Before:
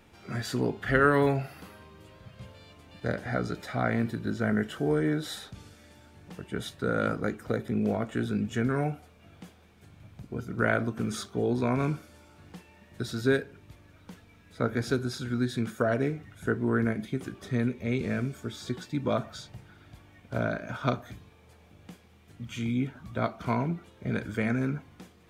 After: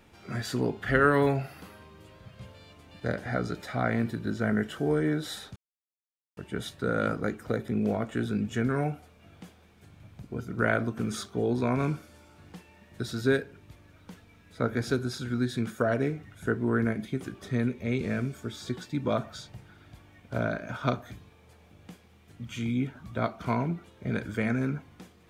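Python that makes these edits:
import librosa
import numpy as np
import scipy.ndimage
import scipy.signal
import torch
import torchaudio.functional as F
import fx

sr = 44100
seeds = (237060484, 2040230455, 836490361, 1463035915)

y = fx.edit(x, sr, fx.silence(start_s=5.56, length_s=0.81), tone=tone)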